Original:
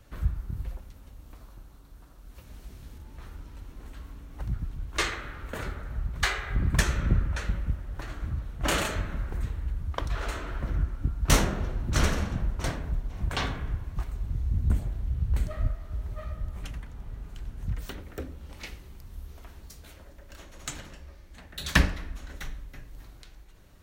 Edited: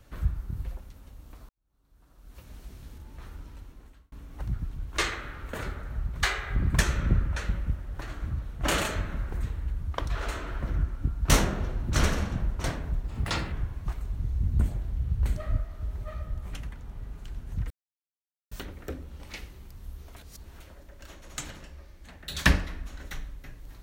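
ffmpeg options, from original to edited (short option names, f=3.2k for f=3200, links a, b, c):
-filter_complex "[0:a]asplit=8[a][b][c][d][e][f][g][h];[a]atrim=end=1.49,asetpts=PTS-STARTPTS,afade=t=out:st=1.486:d=0.004:c=hsin[i];[b]atrim=start=1.49:end=4.12,asetpts=PTS-STARTPTS,afade=t=in:d=0.88:c=qua,afade=t=out:st=2:d=0.63[j];[c]atrim=start=4.12:end=13.044,asetpts=PTS-STARTPTS,afade=t=in:d=0.004:c=hsin[k];[d]atrim=start=13.04:end=13.63,asetpts=PTS-STARTPTS,asetrate=53802,aresample=44100,atrim=end_sample=21327,asetpts=PTS-STARTPTS[l];[e]atrim=start=13.626:end=17.81,asetpts=PTS-STARTPTS,afade=t=out:st=4.18:d=0.004:c=hsin,apad=pad_dur=0.81[m];[f]atrim=start=17.81:end=19.462,asetpts=PTS-STARTPTS,afade=t=in:d=0.004:c=hsin[n];[g]atrim=start=19.458:end=19.902,asetpts=PTS-STARTPTS,areverse[o];[h]atrim=start=19.898[p];[i][j][k]concat=n=3:v=0:a=1[q];[q][l]acrossfade=d=0.004:c1=hsin:c2=hsin[r];[m][n]concat=n=2:v=0:a=1[s];[r][s]acrossfade=d=0.004:c1=hsin:c2=hsin[t];[t][o]acrossfade=d=0.004:c1=hsin:c2=hsin[u];[u][p]acrossfade=d=0.004:c1=hsin:c2=hsin"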